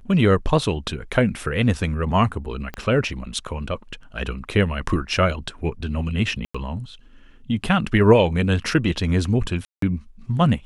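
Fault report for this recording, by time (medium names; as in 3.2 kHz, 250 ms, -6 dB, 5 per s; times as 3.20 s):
2.74 s: pop -17 dBFS
6.45–6.54 s: dropout 95 ms
9.65–9.82 s: dropout 173 ms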